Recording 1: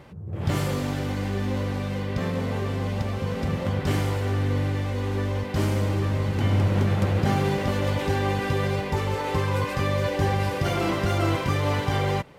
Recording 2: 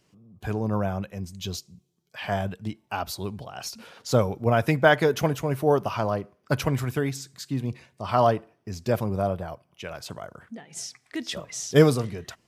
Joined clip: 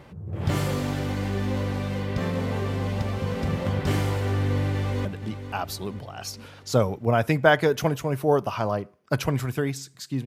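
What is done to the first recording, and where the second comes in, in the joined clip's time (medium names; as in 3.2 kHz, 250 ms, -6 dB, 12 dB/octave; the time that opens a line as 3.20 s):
recording 1
4.28–5.05 s: echo throw 470 ms, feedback 60%, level -12 dB
5.05 s: go over to recording 2 from 2.44 s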